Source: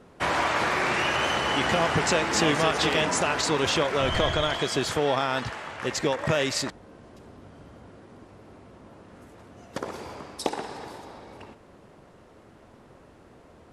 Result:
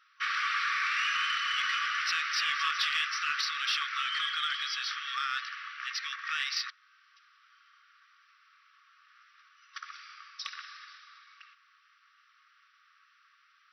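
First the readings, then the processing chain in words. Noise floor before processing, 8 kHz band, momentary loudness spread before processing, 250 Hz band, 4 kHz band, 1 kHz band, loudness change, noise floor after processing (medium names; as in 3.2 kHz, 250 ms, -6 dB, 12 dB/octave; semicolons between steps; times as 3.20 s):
-53 dBFS, -11.0 dB, 15 LU, under -40 dB, -2.5 dB, -7.5 dB, -5.5 dB, -66 dBFS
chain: FFT band-pass 1.1–6 kHz; in parallel at -7 dB: saturation -24 dBFS, distortion -14 dB; on the sum: trim -5 dB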